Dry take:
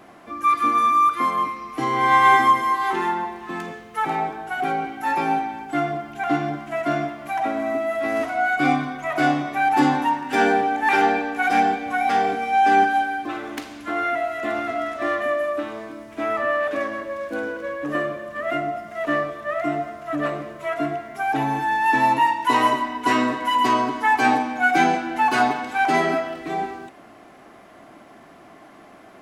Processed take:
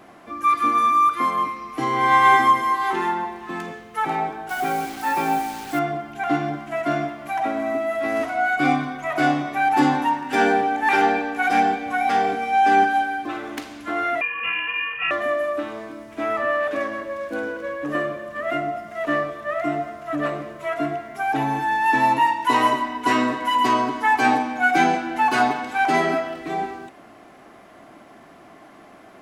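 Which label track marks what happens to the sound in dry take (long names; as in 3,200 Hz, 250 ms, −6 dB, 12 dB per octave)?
4.490000	5.790000	bit-depth reduction 6 bits, dither none
14.210000	15.110000	voice inversion scrambler carrier 3,100 Hz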